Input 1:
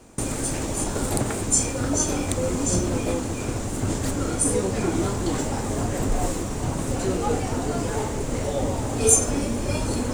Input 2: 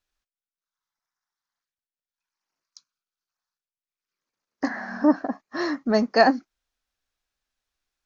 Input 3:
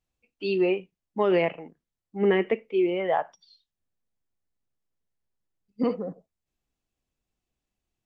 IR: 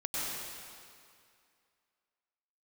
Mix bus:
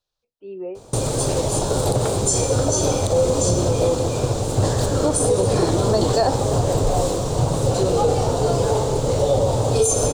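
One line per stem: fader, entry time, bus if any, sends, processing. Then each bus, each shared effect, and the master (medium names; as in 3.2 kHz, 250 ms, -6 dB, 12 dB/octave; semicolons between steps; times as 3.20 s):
-0.5 dB, 0.75 s, send -13.5 dB, none
-3.5 dB, 0.00 s, no send, none
-13.0 dB, 0.00 s, no send, low-pass 2 kHz 24 dB/octave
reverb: on, RT60 2.3 s, pre-delay 91 ms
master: graphic EQ 125/250/500/1000/2000/4000 Hz +10/-7/+11/+4/-9/+10 dB; peak limiter -9 dBFS, peak gain reduction 10 dB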